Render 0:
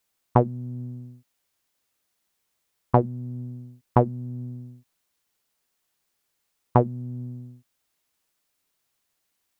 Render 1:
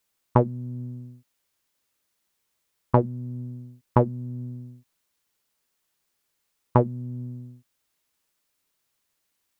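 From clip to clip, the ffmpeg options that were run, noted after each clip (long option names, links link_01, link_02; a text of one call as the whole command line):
ffmpeg -i in.wav -af "bandreject=frequency=730:width=12" out.wav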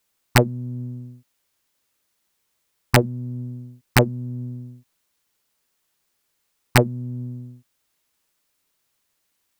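ffmpeg -i in.wav -af "aeval=exprs='(mod(2*val(0)+1,2)-1)/2':channel_layout=same,volume=3.5dB" out.wav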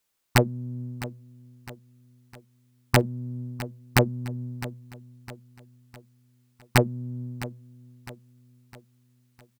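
ffmpeg -i in.wav -af "aecho=1:1:658|1316|1974|2632:0.158|0.0729|0.0335|0.0154,volume=-4dB" out.wav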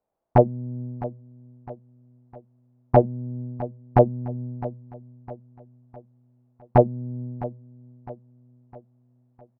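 ffmpeg -i in.wav -af "lowpass=frequency=690:width_type=q:width=3.4,volume=1.5dB" out.wav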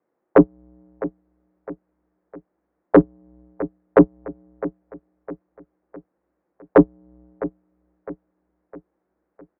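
ffmpeg -i in.wav -af "tiltshelf=frequency=750:gain=-9.5,highpass=frequency=520:width_type=q:width=0.5412,highpass=frequency=520:width_type=q:width=1.307,lowpass=frequency=2200:width_type=q:width=0.5176,lowpass=frequency=2200:width_type=q:width=0.7071,lowpass=frequency=2200:width_type=q:width=1.932,afreqshift=-310,acontrast=63,volume=2.5dB" out.wav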